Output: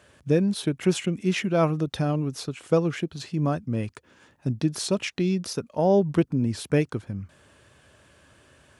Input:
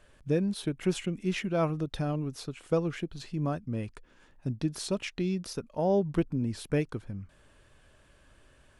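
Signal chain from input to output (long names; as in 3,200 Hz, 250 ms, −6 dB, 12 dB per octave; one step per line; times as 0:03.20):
high-pass filter 72 Hz 24 dB per octave
parametric band 6,300 Hz +2 dB
level +6 dB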